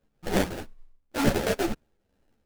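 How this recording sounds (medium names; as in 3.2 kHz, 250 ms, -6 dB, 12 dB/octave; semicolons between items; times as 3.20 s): phasing stages 2, 2.1 Hz, lowest notch 500–1700 Hz; aliases and images of a low sample rate 1.1 kHz, jitter 20%; a shimmering, thickened sound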